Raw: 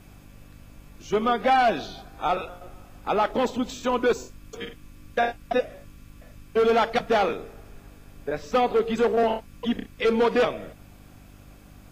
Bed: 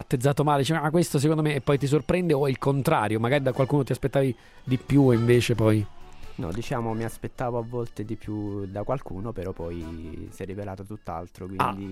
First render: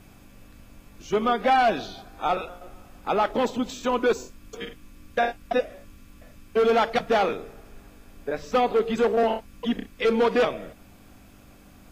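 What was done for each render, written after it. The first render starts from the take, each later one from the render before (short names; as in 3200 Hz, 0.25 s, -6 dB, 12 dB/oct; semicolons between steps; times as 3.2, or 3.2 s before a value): de-hum 50 Hz, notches 3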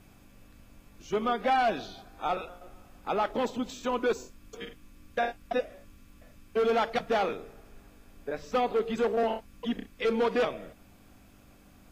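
gain -5.5 dB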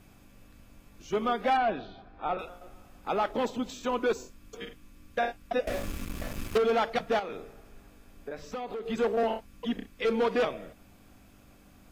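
1.57–2.39 air absorption 310 m; 5.67–6.58 sample leveller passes 5; 7.19–8.86 compressor, threshold -33 dBFS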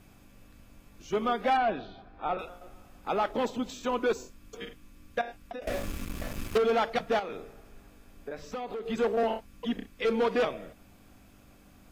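5.21–5.62 compressor 16:1, threshold -35 dBFS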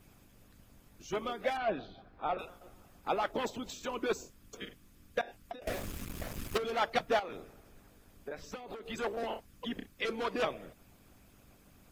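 harmonic-percussive split harmonic -12 dB; high shelf 8000 Hz +5 dB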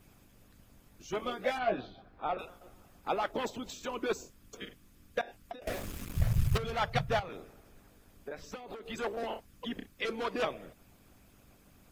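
1.18–1.9 doubler 16 ms -3 dB; 6.16–7.29 resonant low shelf 190 Hz +13.5 dB, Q 3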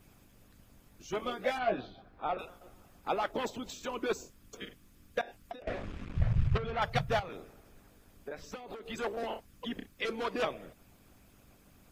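5.62–6.82 LPF 2700 Hz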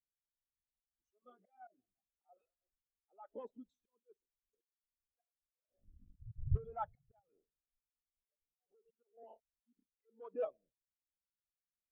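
auto swell 0.299 s; spectral expander 2.5:1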